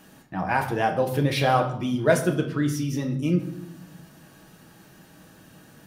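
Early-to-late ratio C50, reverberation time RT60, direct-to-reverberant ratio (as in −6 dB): 10.0 dB, 0.80 s, 2.5 dB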